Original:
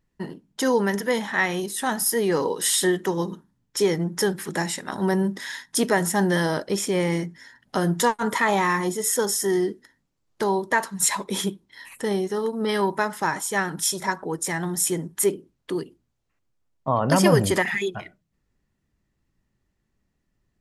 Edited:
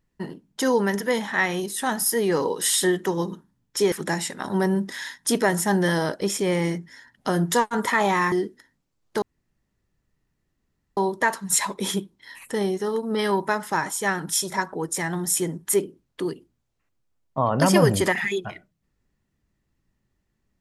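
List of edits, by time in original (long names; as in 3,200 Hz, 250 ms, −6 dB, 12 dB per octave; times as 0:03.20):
0:03.92–0:04.40: remove
0:08.80–0:09.57: remove
0:10.47: splice in room tone 1.75 s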